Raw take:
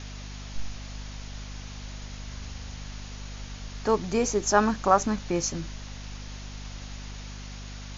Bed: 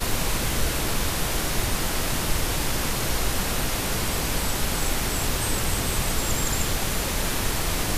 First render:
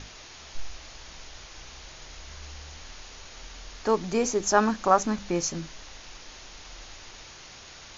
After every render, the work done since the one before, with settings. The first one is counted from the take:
mains-hum notches 50/100/150/200/250 Hz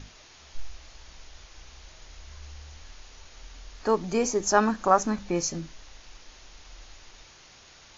noise reduction from a noise print 6 dB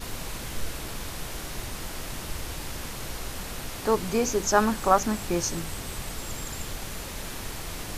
mix in bed −10.5 dB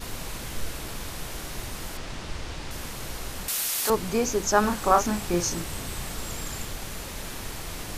0:01.97–0:02.71: low-pass filter 5,900 Hz
0:03.48–0:03.90: spectral tilt +4.5 dB per octave
0:04.60–0:06.65: double-tracking delay 34 ms −5 dB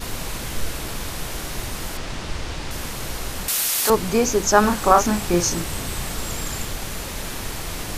level +6 dB
brickwall limiter −1 dBFS, peak gain reduction 2 dB

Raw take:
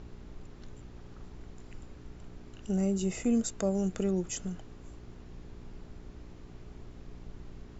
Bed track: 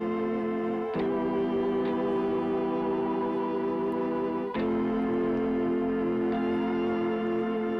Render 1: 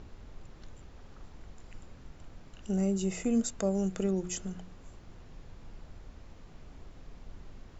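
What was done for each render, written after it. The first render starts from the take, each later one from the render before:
hum removal 60 Hz, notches 7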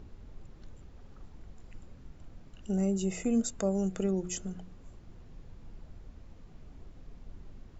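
broadband denoise 6 dB, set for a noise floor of −52 dBFS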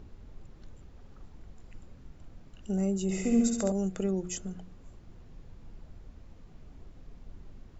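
0:03.02–0:03.72: flutter between parallel walls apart 11.7 metres, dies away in 1 s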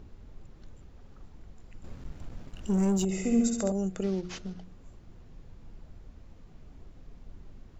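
0:01.84–0:03.05: leveller curve on the samples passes 2
0:04.03–0:04.64: variable-slope delta modulation 32 kbit/s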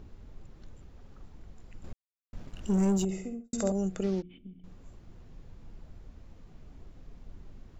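0:01.93–0:02.33: silence
0:02.90–0:03.53: fade out and dull
0:04.22–0:04.64: formant resonators in series i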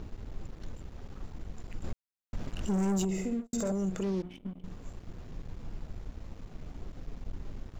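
leveller curve on the samples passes 2
brickwall limiter −25.5 dBFS, peak gain reduction 9.5 dB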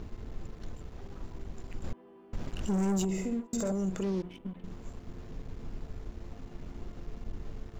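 mix in bed track −27.5 dB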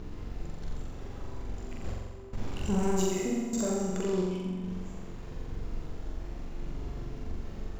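flutter between parallel walls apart 7.5 metres, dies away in 1.3 s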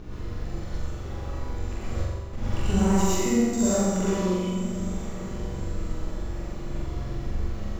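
feedback delay with all-pass diffusion 1,083 ms, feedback 41%, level −15 dB
reverb whose tail is shaped and stops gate 150 ms rising, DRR −7 dB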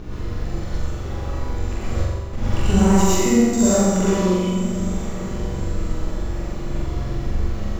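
level +6.5 dB
brickwall limiter −3 dBFS, peak gain reduction 1 dB

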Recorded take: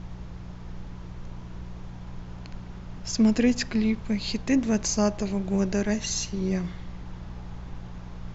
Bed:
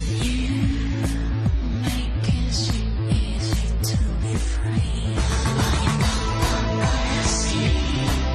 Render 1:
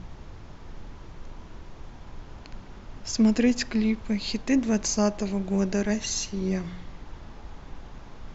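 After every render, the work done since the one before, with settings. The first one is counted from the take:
hum removal 60 Hz, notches 3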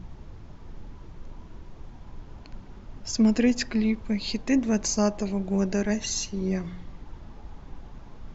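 broadband denoise 6 dB, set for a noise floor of −45 dBFS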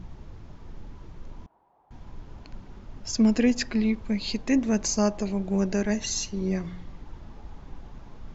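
0:01.46–0:01.91: resonant band-pass 810 Hz, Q 5.1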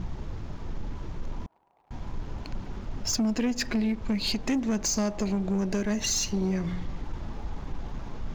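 downward compressor 6 to 1, threshold −29 dBFS, peak gain reduction 12 dB
leveller curve on the samples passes 2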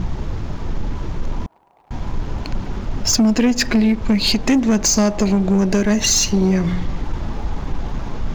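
level +11.5 dB

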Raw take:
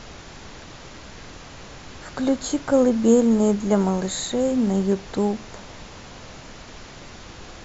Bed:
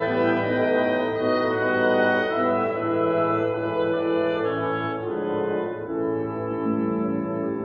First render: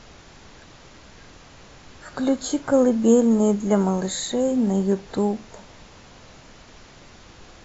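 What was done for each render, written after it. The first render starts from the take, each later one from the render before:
noise reduction from a noise print 6 dB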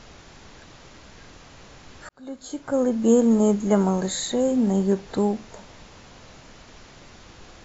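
0:02.09–0:03.30: fade in linear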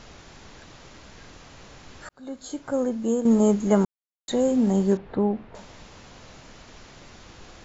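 0:02.46–0:03.25: fade out, to −9.5 dB
0:03.85–0:04.28: silence
0:04.97–0:05.55: high-frequency loss of the air 490 metres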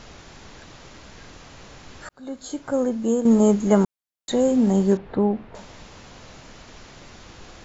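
level +2.5 dB

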